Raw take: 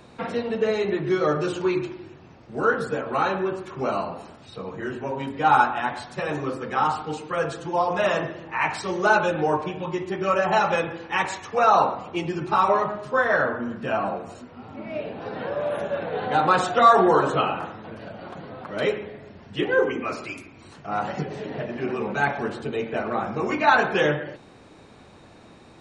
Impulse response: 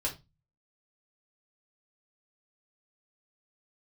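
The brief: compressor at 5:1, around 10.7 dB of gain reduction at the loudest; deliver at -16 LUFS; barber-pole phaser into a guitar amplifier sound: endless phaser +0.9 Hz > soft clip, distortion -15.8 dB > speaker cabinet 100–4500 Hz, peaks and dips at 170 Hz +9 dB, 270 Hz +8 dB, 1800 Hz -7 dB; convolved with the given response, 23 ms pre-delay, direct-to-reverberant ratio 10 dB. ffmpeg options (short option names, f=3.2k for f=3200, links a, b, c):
-filter_complex "[0:a]acompressor=threshold=-23dB:ratio=5,asplit=2[a][b];[1:a]atrim=start_sample=2205,adelay=23[c];[b][c]afir=irnorm=-1:irlink=0,volume=-14dB[d];[a][d]amix=inputs=2:normalize=0,asplit=2[e][f];[f]afreqshift=0.9[g];[e][g]amix=inputs=2:normalize=1,asoftclip=threshold=-24dB,highpass=100,equalizer=f=170:t=q:w=4:g=9,equalizer=f=270:t=q:w=4:g=8,equalizer=f=1.8k:t=q:w=4:g=-7,lowpass=f=4.5k:w=0.5412,lowpass=f=4.5k:w=1.3066,volume=16dB"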